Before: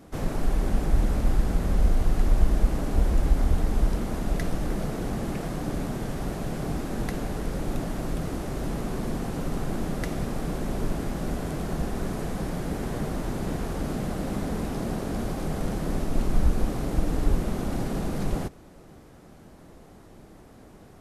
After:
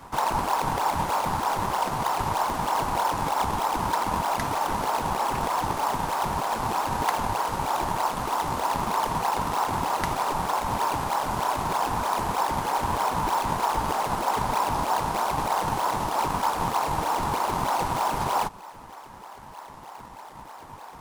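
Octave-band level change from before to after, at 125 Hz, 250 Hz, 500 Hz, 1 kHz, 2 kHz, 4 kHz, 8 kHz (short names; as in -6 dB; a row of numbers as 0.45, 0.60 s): -6.0, -5.5, +2.0, +16.5, +8.0, +9.0, +7.0 dB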